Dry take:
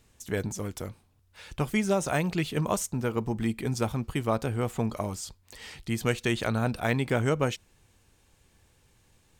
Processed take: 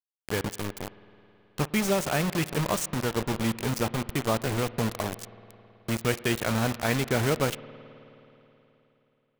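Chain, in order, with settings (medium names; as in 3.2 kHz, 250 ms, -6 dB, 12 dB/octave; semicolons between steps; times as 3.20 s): bit crusher 5-bit; spring tank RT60 3.4 s, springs 53 ms, chirp 60 ms, DRR 16.5 dB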